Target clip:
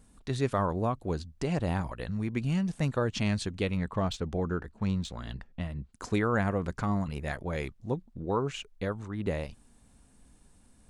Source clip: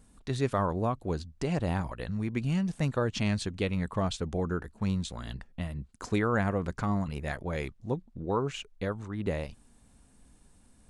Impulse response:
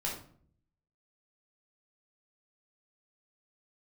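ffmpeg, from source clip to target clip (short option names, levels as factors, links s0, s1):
-filter_complex "[0:a]asettb=1/sr,asplit=3[s0][s1][s2];[s0]atrim=end=3.774[s3];[s1]atrim=start=3.77:end=5.93,asetpts=PTS-STARTPTS,afade=t=in:d=0.004:c=qsin,afade=t=out:st=2.156:d=0.004:c=qsin,adynamicsmooth=sensitivity=5.5:basefreq=6800[s4];[s2]atrim=start=5.926[s5];[s3][s4]acrossfade=d=0.004:c1=hsin:c2=qsin[s6];[s6][s5]acrossfade=d=0.004:c1=qsin:c2=hsin"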